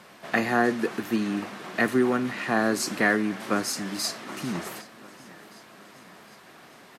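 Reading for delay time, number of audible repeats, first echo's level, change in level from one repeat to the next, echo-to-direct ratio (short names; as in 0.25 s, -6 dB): 0.761 s, 3, -21.0 dB, -5.0 dB, -19.5 dB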